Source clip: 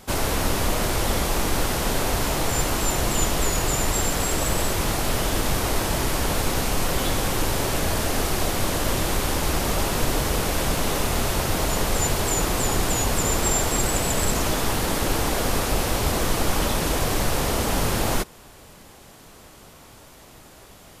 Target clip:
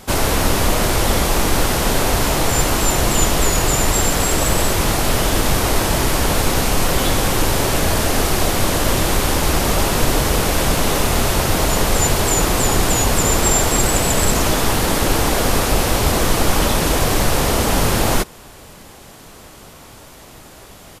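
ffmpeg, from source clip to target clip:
-af "aresample=32000,aresample=44100,volume=6.5dB"

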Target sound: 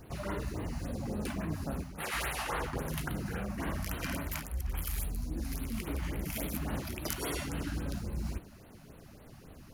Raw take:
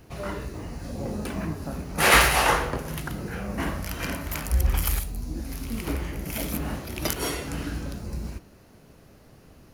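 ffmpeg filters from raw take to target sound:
-af "areverse,acompressor=threshold=-31dB:ratio=16,areverse,afftfilt=real='re*(1-between(b*sr/1024,380*pow(6600/380,0.5+0.5*sin(2*PI*3.6*pts/sr))/1.41,380*pow(6600/380,0.5+0.5*sin(2*PI*3.6*pts/sr))*1.41))':imag='im*(1-between(b*sr/1024,380*pow(6600/380,0.5+0.5*sin(2*PI*3.6*pts/sr))/1.41,380*pow(6600/380,0.5+0.5*sin(2*PI*3.6*pts/sr))*1.41))':win_size=1024:overlap=0.75"

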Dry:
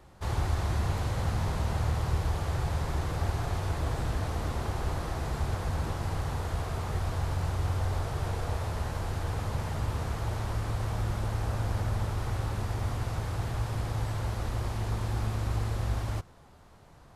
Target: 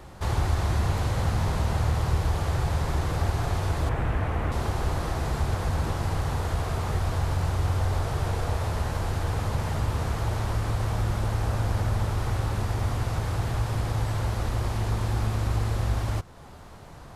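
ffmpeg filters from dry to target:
-filter_complex "[0:a]asettb=1/sr,asplit=3[a][b][c];[a]atrim=end=3.894[d];[b]atrim=start=3.89:end=4.52,asetpts=PTS-STARTPTS,afade=t=in:d=0.004:c=qsin,afade=t=out:st=0.626:d=0.004:c=qsin,highshelf=f=3.3k:t=q:w=1.5:g=-10.5[e];[c]atrim=start=4.516[f];[d][e]acrossfade=d=0.004:c1=hsin:c2=qsin[g];[g][f]acrossfade=d=0.004:c1=qsin:c2=hsin,asplit=2[h][i];[i]acompressor=threshold=-43dB:ratio=6,volume=2.5dB[j];[h][j]amix=inputs=2:normalize=0,volume=2.5dB"

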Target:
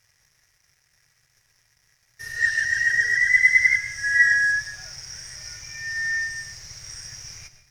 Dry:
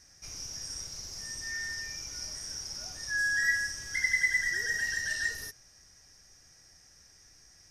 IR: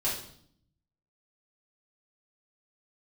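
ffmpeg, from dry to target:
-filter_complex "[0:a]areverse,highshelf=f=11k:g=-9,aeval=exprs='sgn(val(0))*max(abs(val(0))-0.00119,0)':c=same,equalizer=f=125:t=o:w=1:g=12,equalizer=f=250:t=o:w=1:g=-10,equalizer=f=2k:t=o:w=1:g=12,equalizer=f=8k:t=o:w=1:g=4,asplit=2[a][b];[1:a]atrim=start_sample=2205,adelay=101[c];[b][c]afir=irnorm=-1:irlink=0,volume=-18.5dB[d];[a][d]amix=inputs=2:normalize=0"

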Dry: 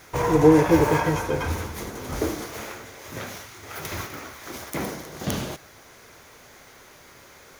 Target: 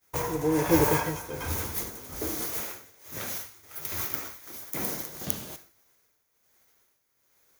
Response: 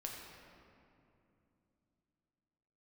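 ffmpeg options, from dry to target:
-filter_complex "[0:a]agate=range=-33dB:threshold=-36dB:ratio=3:detection=peak,tremolo=f=1.2:d=0.67,aemphasis=mode=production:type=50fm,asplit=2[a][b];[1:a]atrim=start_sample=2205,afade=t=out:st=0.21:d=0.01,atrim=end_sample=9702[c];[b][c]afir=irnorm=-1:irlink=0,volume=-12dB[d];[a][d]amix=inputs=2:normalize=0,volume=-4.5dB"

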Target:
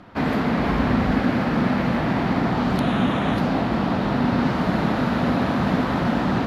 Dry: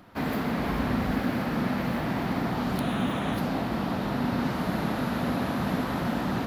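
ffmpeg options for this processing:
-af "adynamicsmooth=sensitivity=3:basefreq=5.7k,volume=7dB"

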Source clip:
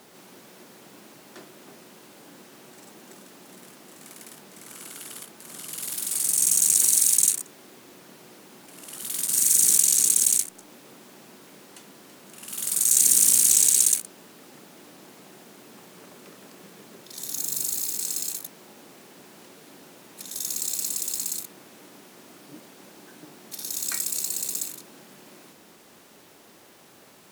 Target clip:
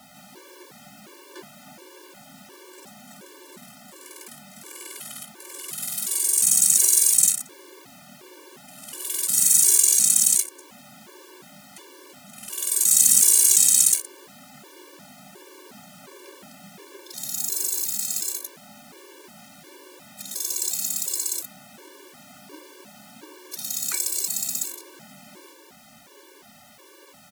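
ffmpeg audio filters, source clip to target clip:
-filter_complex "[0:a]bandreject=f=60:t=h:w=6,bandreject=f=120:t=h:w=6,bandreject=f=180:t=h:w=6,bandreject=f=240:t=h:w=6,bandreject=f=300:t=h:w=6,acrossover=split=420|770|1900[a][b][c][d];[a]acrusher=samples=35:mix=1:aa=0.000001[e];[b]aecho=1:1:5.4:0.75[f];[e][f][c][d]amix=inputs=4:normalize=0,afftfilt=real='re*gt(sin(2*PI*1.4*pts/sr)*(1-2*mod(floor(b*sr/1024/300),2)),0)':imag='im*gt(sin(2*PI*1.4*pts/sr)*(1-2*mod(floor(b*sr/1024/300),2)),0)':win_size=1024:overlap=0.75,volume=5.5dB"

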